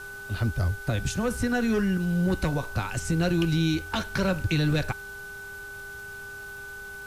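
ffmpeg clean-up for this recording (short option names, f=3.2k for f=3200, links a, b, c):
-af "adeclick=t=4,bandreject=f=400.9:t=h:w=4,bandreject=f=801.8:t=h:w=4,bandreject=f=1.2027k:t=h:w=4,bandreject=f=1.5k:w=30,afwtdn=0.0028"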